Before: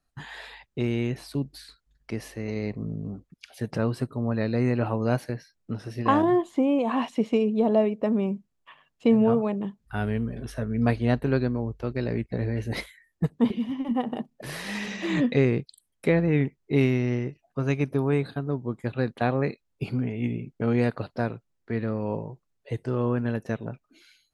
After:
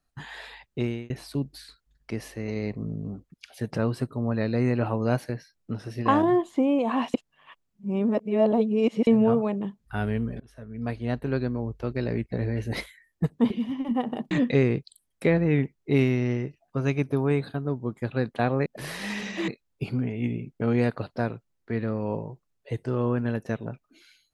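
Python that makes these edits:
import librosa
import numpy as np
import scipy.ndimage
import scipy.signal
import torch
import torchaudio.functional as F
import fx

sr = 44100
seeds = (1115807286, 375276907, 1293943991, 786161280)

y = fx.edit(x, sr, fx.fade_out_span(start_s=0.82, length_s=0.28),
    fx.reverse_span(start_s=7.14, length_s=1.93),
    fx.fade_in_from(start_s=10.4, length_s=1.42, floor_db=-20.5),
    fx.move(start_s=14.31, length_s=0.82, to_s=19.48), tone=tone)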